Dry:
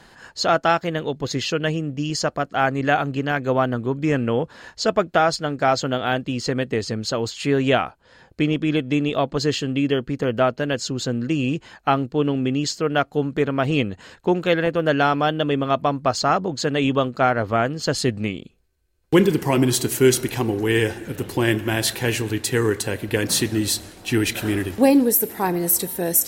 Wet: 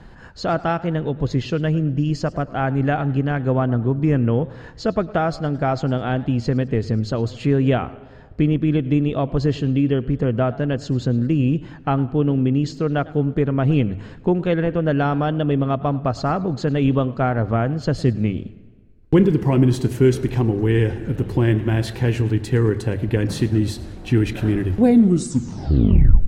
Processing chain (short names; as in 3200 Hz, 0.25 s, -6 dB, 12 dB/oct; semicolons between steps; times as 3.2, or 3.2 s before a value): tape stop at the end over 1.55 s; notches 50/100 Hz; in parallel at -0.5 dB: compressor, threshold -28 dBFS, peak gain reduction 16.5 dB; on the sum: RIAA curve playback; on a send at -22 dB: reverb RT60 1.7 s, pre-delay 49 ms; on the sum: warbling echo 0.107 s, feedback 45%, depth 184 cents, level -20.5 dB; gain -6 dB